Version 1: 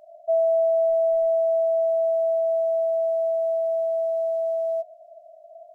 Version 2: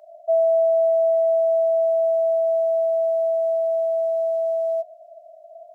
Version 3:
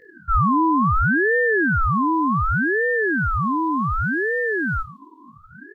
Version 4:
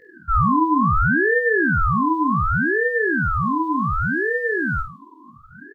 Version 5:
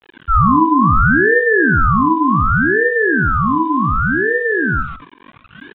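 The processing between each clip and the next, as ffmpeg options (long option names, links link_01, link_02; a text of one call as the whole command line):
ffmpeg -i in.wav -af "highpass=frequency=430:width=0.5412,highpass=frequency=430:width=1.3066,volume=2.5dB" out.wav
ffmpeg -i in.wav -af "superequalizer=9b=3.16:13b=2.24,aecho=1:1:20|50|95|162.5|263.8:0.631|0.398|0.251|0.158|0.1,aeval=exprs='val(0)*sin(2*PI*740*n/s+740*0.55/0.67*sin(2*PI*0.67*n/s))':channel_layout=same" out.wav
ffmpeg -i in.wav -filter_complex "[0:a]asplit=2[link_01][link_02];[link_02]adelay=48,volume=-8.5dB[link_03];[link_01][link_03]amix=inputs=2:normalize=0" out.wav
ffmpeg -i in.wav -af "aeval=exprs='val(0)*gte(abs(val(0)),0.00944)':channel_layout=same,aecho=1:1:131:0.251,aresample=8000,aresample=44100,volume=5.5dB" out.wav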